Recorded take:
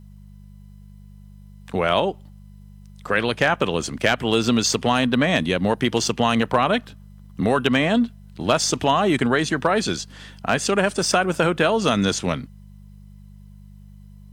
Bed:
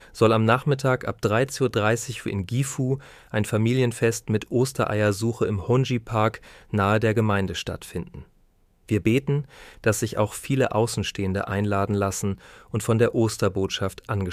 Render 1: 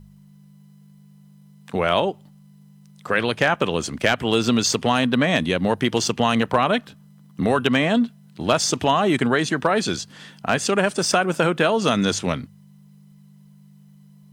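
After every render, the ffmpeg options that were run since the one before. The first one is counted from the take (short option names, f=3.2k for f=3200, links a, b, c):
-af "bandreject=f=50:t=h:w=4,bandreject=f=100:t=h:w=4"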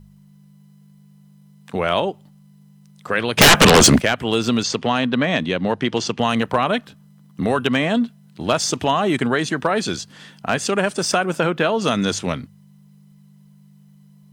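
-filter_complex "[0:a]asplit=3[a][b][c];[a]afade=t=out:st=3.37:d=0.02[d];[b]aeval=exprs='0.531*sin(PI/2*7.08*val(0)/0.531)':c=same,afade=t=in:st=3.37:d=0.02,afade=t=out:st=3.99:d=0.02[e];[c]afade=t=in:st=3.99:d=0.02[f];[d][e][f]amix=inputs=3:normalize=0,asettb=1/sr,asplit=3[g][h][i];[g]atrim=end=4.634[j];[h]atrim=start=4.63:end=6.19,asetpts=PTS-STARTPTS,afade=t=in:d=0.004:c=qsin,afade=t=out:st=1.556:d=0.004:c=qsin,highpass=100,lowpass=5.6k[k];[i]atrim=start=6.186[l];[j][k]acrossfade=d=0.004:c1=hsin:c2=qsin[m];[m][l]acrossfade=d=0.004:c1=qsin:c2=hsin,asettb=1/sr,asplit=3[n][o][p];[n]atrim=end=11.394[q];[o]atrim=start=11.39:end=11.81,asetpts=PTS-STARTPTS,afade=t=in:d=0.004:c=qsin,afade=t=out:st=0.416:d=0.004:c=qsin,equalizer=f=8.8k:t=o:w=0.78:g=-9[r];[p]atrim=start=11.806[s];[q][r]acrossfade=d=0.004:c1=hsin:c2=qsin[t];[t][s]acrossfade=d=0.004:c1=qsin:c2=hsin"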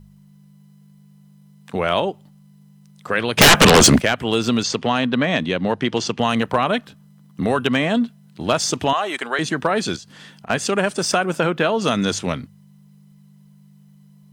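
-filter_complex "[0:a]asettb=1/sr,asplit=3[a][b][c];[a]atrim=end=8.934[d];[b]atrim=start=8.93:end=9.39,asetpts=PTS-STARTPTS,afade=t=in:d=0.004:c=qsin,afade=t=out:st=0.456:d=0.004:c=qsin,highpass=610[e];[c]atrim=start=9.386[f];[d][e]acrossfade=d=0.004:c1=hsin:c2=qsin[g];[g][f]acrossfade=d=0.004:c1=qsin:c2=hsin,asettb=1/sr,asplit=3[h][i][j];[h]atrim=end=9.964[k];[i]atrim=start=9.96:end=10.5,asetpts=PTS-STARTPTS,afade=t=in:d=0.004:c=qsin,afade=t=out:st=0.536:d=0.004:c=qsin,acompressor=threshold=-36dB:ratio=5:attack=3.2:release=140:knee=1:detection=peak[l];[j]atrim=start=10.496[m];[k][l]acrossfade=d=0.004:c1=hsin:c2=qsin[n];[n][m]acrossfade=d=0.004:c1=qsin:c2=hsin"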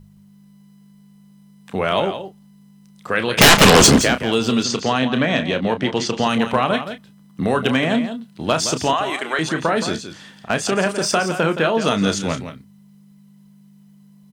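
-filter_complex "[0:a]asplit=2[a][b];[b]adelay=31,volume=-9.5dB[c];[a][c]amix=inputs=2:normalize=0,aecho=1:1:170:0.299"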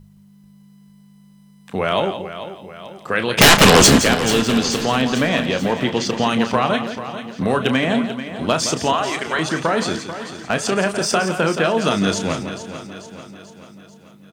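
-af "aecho=1:1:439|878|1317|1756|2195|2634:0.251|0.136|0.0732|0.0396|0.0214|0.0115"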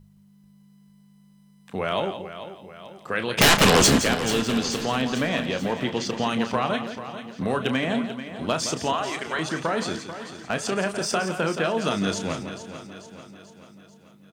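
-af "volume=-6.5dB"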